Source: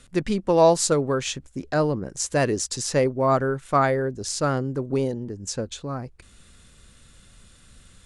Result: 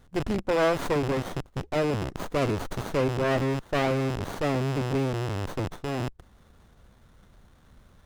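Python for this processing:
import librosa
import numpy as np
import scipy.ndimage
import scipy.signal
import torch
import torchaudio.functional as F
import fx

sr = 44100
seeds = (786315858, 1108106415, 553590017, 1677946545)

y = fx.rattle_buzz(x, sr, strikes_db=-40.0, level_db=-15.0)
y = fx.cheby_harmonics(y, sr, harmonics=(5,), levels_db=(-16,), full_scale_db=-5.0)
y = fx.running_max(y, sr, window=17)
y = y * librosa.db_to_amplitude(-7.5)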